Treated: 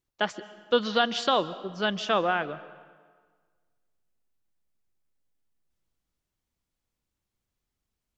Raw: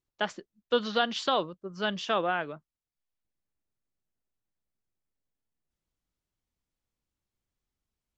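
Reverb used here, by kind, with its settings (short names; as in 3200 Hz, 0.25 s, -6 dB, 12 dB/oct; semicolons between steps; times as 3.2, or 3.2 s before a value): digital reverb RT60 1.6 s, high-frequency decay 0.75×, pre-delay 0.1 s, DRR 16.5 dB; gain +3 dB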